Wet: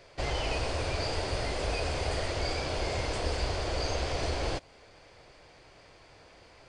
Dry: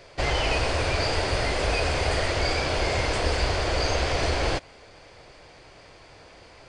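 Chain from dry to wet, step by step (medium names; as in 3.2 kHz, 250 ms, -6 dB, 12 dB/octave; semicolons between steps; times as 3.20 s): dynamic bell 1.8 kHz, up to -4 dB, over -42 dBFS, Q 0.91; trim -6 dB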